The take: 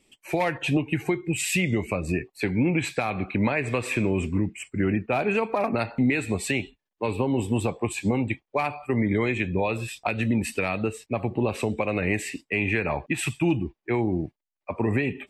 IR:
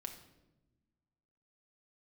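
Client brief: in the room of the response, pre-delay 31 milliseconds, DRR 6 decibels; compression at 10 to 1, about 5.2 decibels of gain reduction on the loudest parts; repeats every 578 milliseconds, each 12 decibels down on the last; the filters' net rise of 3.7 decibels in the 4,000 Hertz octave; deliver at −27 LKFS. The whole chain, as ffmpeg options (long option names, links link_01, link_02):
-filter_complex "[0:a]equalizer=frequency=4000:width_type=o:gain=5,acompressor=threshold=-24dB:ratio=10,aecho=1:1:578|1156|1734:0.251|0.0628|0.0157,asplit=2[link_01][link_02];[1:a]atrim=start_sample=2205,adelay=31[link_03];[link_02][link_03]afir=irnorm=-1:irlink=0,volume=-3dB[link_04];[link_01][link_04]amix=inputs=2:normalize=0,volume=1.5dB"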